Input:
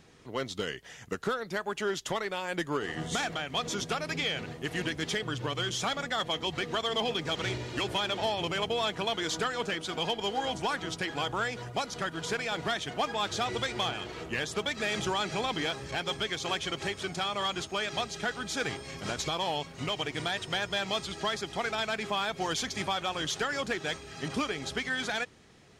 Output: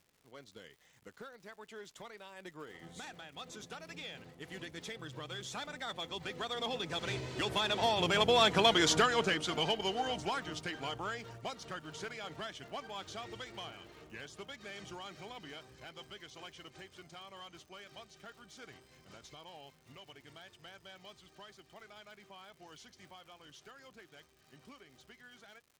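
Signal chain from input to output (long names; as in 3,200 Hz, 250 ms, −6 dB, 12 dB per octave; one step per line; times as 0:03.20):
source passing by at 0:08.66, 17 m/s, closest 9 metres
surface crackle 200 per second −59 dBFS
level +5 dB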